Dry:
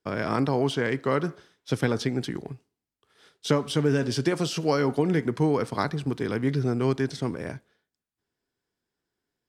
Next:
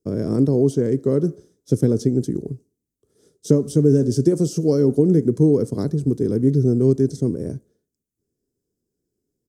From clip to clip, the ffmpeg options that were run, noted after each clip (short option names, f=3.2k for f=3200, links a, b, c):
-af "firequalizer=gain_entry='entry(420,0);entry(810,-22);entry(2600,-29);entry(6300,-4)':delay=0.05:min_phase=1,volume=8.5dB"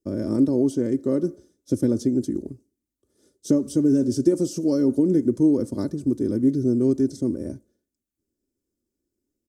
-af "aecho=1:1:3.4:0.65,volume=-4dB"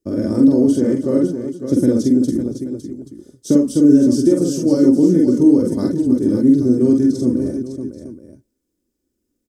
-af "aecho=1:1:44|48|313|558|831:0.596|0.668|0.188|0.376|0.188,volume=4dB"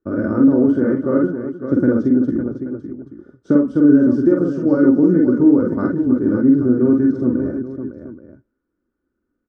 -af "lowpass=f=1.4k:t=q:w=6.4,volume=-1dB"